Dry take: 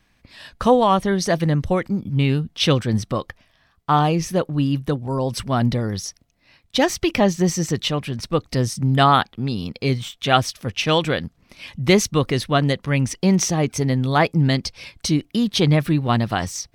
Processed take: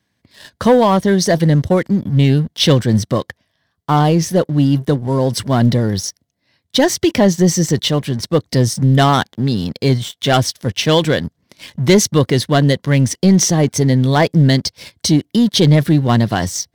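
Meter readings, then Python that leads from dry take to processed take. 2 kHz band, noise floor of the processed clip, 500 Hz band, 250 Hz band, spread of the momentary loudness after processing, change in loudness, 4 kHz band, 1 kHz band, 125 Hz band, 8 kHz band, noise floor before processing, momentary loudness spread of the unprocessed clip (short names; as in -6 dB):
+2.5 dB, -70 dBFS, +5.5 dB, +6.5 dB, 7 LU, +5.5 dB, +5.0 dB, +1.5 dB, +7.0 dB, +7.0 dB, -62 dBFS, 9 LU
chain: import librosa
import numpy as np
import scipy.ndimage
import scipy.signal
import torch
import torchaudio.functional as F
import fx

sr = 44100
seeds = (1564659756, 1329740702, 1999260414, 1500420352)

y = scipy.signal.sosfilt(scipy.signal.butter(4, 77.0, 'highpass', fs=sr, output='sos'), x)
y = fx.leveller(y, sr, passes=2)
y = fx.graphic_eq_31(y, sr, hz=(800, 1250, 2500), db=(-4, -8, -9))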